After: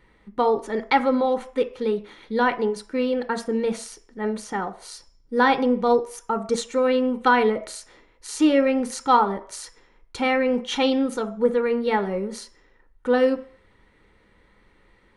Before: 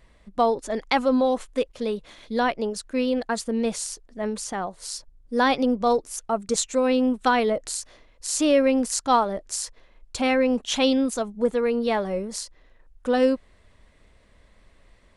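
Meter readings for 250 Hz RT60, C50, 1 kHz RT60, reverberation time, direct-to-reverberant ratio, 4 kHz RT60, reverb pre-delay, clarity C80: 0.35 s, 16.0 dB, 0.55 s, 0.50 s, 9.5 dB, 0.60 s, 3 ms, 19.5 dB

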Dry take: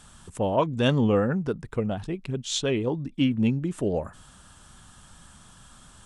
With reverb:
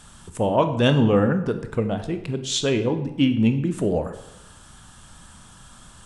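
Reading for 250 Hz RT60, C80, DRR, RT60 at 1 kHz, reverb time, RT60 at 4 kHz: 0.90 s, 13.0 dB, 8.0 dB, 0.90 s, 0.90 s, 0.65 s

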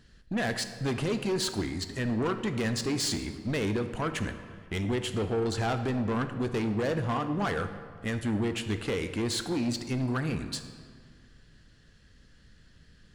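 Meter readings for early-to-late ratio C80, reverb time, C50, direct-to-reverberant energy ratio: 11.0 dB, 1.9 s, 9.5 dB, 8.0 dB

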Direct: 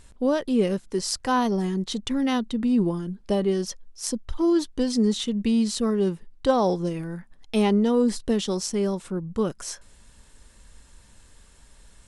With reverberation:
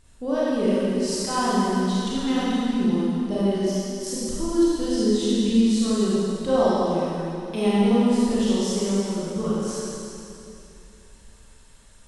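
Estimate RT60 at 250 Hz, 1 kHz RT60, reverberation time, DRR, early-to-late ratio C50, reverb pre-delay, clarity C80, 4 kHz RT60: 2.8 s, 2.6 s, 2.7 s, −9.0 dB, −5.5 dB, 29 ms, −3.0 dB, 2.6 s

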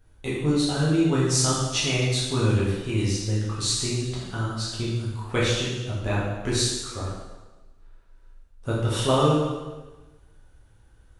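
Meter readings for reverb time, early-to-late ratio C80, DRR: 1.2 s, 3.0 dB, −7.5 dB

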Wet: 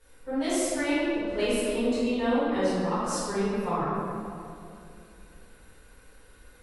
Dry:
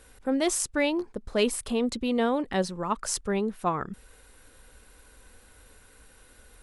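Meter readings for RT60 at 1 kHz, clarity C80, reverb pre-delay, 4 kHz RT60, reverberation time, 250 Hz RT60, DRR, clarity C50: 2.3 s, −1.5 dB, 4 ms, 1.4 s, 2.5 s, 3.1 s, −14.0 dB, −4.5 dB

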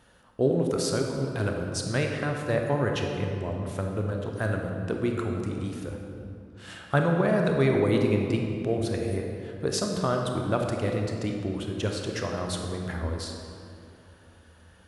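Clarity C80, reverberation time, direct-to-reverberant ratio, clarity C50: 4.0 dB, 2.6 s, 1.5 dB, 2.5 dB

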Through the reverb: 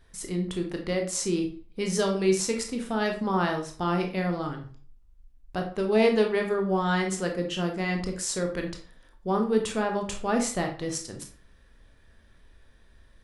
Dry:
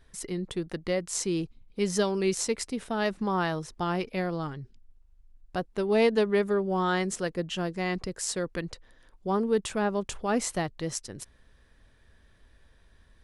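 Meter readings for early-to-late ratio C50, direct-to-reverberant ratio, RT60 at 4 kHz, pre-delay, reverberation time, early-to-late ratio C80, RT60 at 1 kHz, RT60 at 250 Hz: 8.0 dB, 3.0 dB, 0.35 s, 19 ms, 0.45 s, 13.5 dB, 0.45 s, 0.40 s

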